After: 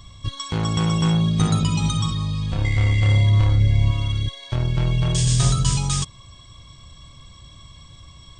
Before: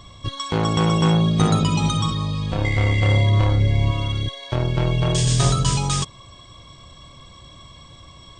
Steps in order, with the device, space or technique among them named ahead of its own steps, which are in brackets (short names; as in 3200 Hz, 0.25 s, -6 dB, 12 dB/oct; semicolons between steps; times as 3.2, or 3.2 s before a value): smiley-face EQ (low shelf 180 Hz +6.5 dB; bell 480 Hz -6 dB 2.2 oct; high shelf 6100 Hz +6 dB); gain -3 dB